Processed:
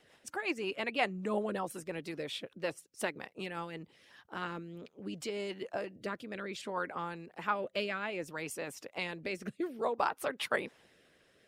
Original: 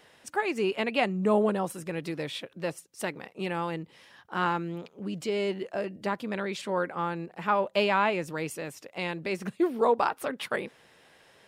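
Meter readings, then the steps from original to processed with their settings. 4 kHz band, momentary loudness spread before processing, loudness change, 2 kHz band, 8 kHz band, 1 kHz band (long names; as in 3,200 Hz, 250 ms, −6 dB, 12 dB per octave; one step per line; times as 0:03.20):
−4.5 dB, 11 LU, −7.5 dB, −4.5 dB, −3.0 dB, −8.0 dB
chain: harmonic and percussive parts rebalanced harmonic −9 dB
rotating-speaker cabinet horn 5.5 Hz, later 0.6 Hz, at 0:03.47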